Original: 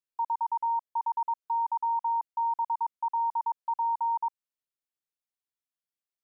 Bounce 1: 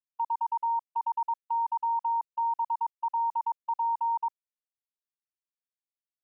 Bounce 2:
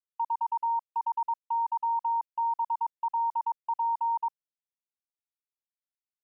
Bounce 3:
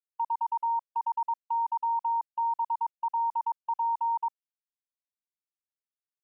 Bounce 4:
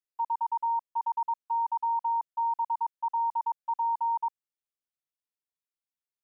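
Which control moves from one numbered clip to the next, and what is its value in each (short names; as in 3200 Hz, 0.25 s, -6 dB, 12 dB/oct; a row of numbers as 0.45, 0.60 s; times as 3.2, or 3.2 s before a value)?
gate, range: -21, -56, -34, -6 dB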